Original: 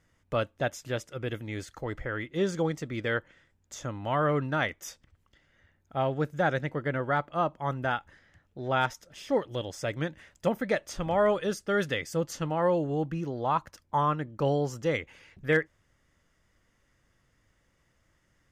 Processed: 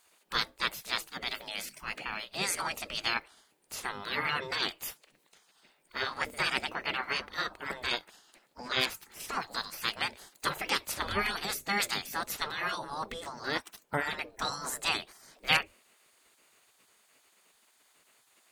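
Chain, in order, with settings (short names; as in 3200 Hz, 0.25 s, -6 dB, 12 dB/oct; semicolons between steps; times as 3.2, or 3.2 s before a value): formant shift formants +5 st; high shelf 5400 Hz +6.5 dB; notches 50/100/150/200/250 Hz; spectral gate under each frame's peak -15 dB weak; gain +8 dB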